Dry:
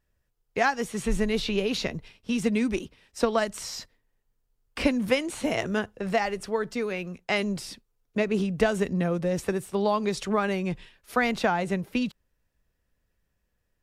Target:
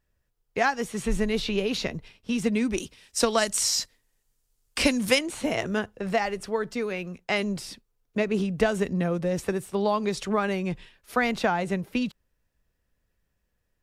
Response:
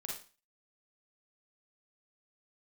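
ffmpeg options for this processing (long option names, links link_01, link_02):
-filter_complex "[0:a]asettb=1/sr,asplit=3[link_01][link_02][link_03];[link_01]atrim=end=2.784[link_04];[link_02]atrim=start=2.78:end=5.19,asetpts=PTS-STARTPTS,afade=type=in:duration=0.004:curve=qsin,afade=type=out:start_time=2.406:duration=0.004:curve=qsin,equalizer=frequency=8400:width=0.38:gain=14[link_05];[link_03]atrim=start=5.186[link_06];[link_04][link_05]acrossfade=duration=0.004:curve1=hsin:curve2=qsin[link_07];[link_07][link_06]acrossfade=duration=0.004:curve1=qsin:curve2=hsin"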